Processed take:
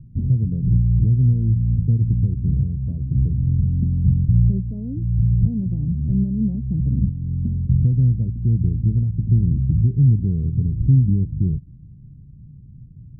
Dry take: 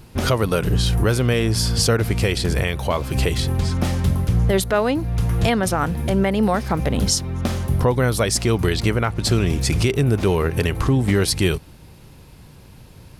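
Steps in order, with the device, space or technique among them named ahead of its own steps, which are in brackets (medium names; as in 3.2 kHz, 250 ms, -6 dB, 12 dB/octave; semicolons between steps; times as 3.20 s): the neighbour's flat through the wall (low-pass 220 Hz 24 dB/octave; peaking EQ 130 Hz +6.5 dB 0.65 oct)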